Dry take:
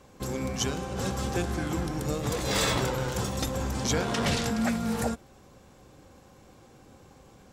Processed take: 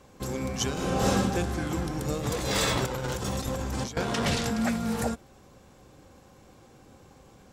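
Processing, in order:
0:00.73–0:01.13: thrown reverb, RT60 1 s, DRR −7.5 dB
0:02.86–0:03.97: compressor whose output falls as the input rises −31 dBFS, ratio −0.5

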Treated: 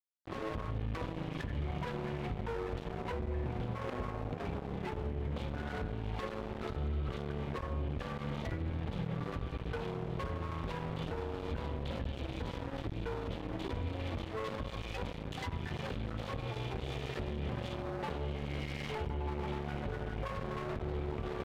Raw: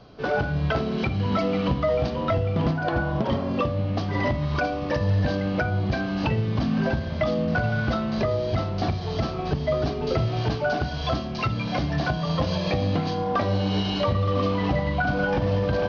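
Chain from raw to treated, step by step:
parametric band 69 Hz +4.5 dB 2 octaves
brickwall limiter −21 dBFS, peak gain reduction 9.5 dB
dead-zone distortion −30.5 dBFS
wrong playback speed 45 rpm record played at 33 rpm
level −3.5 dB

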